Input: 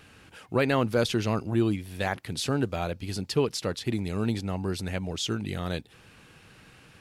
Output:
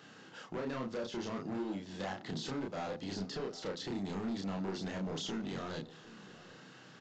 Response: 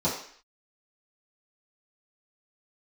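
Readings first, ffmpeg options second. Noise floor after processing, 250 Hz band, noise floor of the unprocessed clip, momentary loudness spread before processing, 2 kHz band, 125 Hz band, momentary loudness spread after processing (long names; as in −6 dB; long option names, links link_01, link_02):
−56 dBFS, −9.0 dB, −55 dBFS, 7 LU, −12.0 dB, −14.5 dB, 15 LU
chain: -filter_complex "[0:a]highpass=frequency=150:width=0.5412,highpass=frequency=150:width=1.3066,deesser=0.95,equalizer=frequency=2400:width_type=o:width=0.24:gain=-12.5,acompressor=threshold=-30dB:ratio=10,asoftclip=type=hard:threshold=-34.5dB,asplit=2[link_01][link_02];[link_02]adelay=31,volume=-2dB[link_03];[link_01][link_03]amix=inputs=2:normalize=0,asplit=2[link_04][link_05];[link_05]adelay=758,volume=-17dB,highshelf=frequency=4000:gain=-17.1[link_06];[link_04][link_06]amix=inputs=2:normalize=0,asplit=2[link_07][link_08];[1:a]atrim=start_sample=2205,adelay=38[link_09];[link_08][link_09]afir=irnorm=-1:irlink=0,volume=-30dB[link_10];[link_07][link_10]amix=inputs=2:normalize=0,aresample=16000,aresample=44100,volume=-2dB"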